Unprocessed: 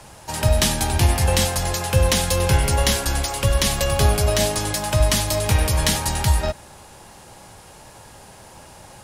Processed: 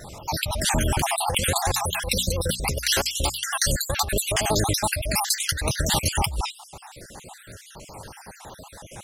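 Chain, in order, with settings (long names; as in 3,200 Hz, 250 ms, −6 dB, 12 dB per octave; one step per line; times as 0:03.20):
time-frequency cells dropped at random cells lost 61%
compressor whose output falls as the input rises −25 dBFS, ratio −1
pitch vibrato 12 Hz 85 cents
0:01.67–0:03.44: mains-hum notches 60/120/180/240 Hz
level +2 dB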